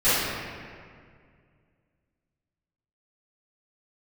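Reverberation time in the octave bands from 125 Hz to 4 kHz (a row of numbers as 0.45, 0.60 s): 2.9, 2.4, 2.2, 1.9, 1.9, 1.3 s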